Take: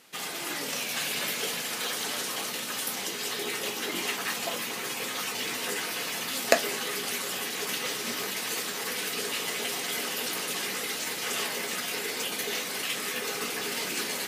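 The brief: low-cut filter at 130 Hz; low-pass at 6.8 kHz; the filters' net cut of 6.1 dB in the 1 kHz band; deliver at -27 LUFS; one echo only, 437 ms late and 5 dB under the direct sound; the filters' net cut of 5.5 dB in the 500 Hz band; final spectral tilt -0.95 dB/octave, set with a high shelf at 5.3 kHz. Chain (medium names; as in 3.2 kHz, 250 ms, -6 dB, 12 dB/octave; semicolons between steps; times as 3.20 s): high-pass 130 Hz; low-pass 6.8 kHz; peaking EQ 500 Hz -5 dB; peaking EQ 1 kHz -6.5 dB; treble shelf 5.3 kHz -5 dB; delay 437 ms -5 dB; trim +5.5 dB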